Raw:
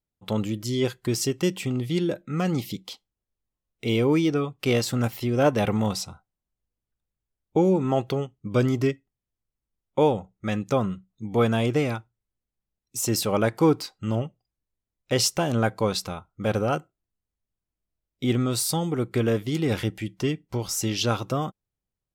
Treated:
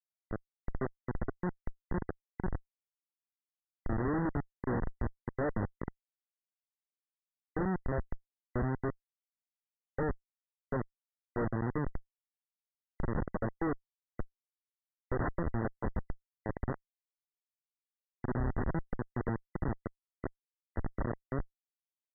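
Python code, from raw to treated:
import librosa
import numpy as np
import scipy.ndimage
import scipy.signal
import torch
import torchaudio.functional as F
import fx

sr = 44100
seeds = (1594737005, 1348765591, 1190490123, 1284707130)

y = fx.low_shelf(x, sr, hz=74.0, db=-5.5)
y = fx.schmitt(y, sr, flips_db=-19.0)
y = fx.brickwall_lowpass(y, sr, high_hz=2000.0)
y = y * librosa.db_to_amplitude(-3.5)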